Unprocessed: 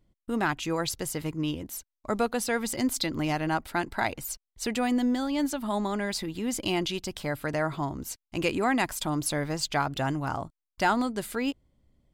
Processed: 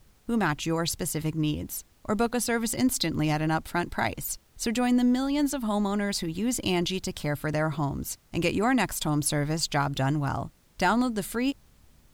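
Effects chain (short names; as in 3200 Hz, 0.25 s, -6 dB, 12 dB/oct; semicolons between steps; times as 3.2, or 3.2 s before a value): added noise pink -65 dBFS; tone controls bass +6 dB, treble +3 dB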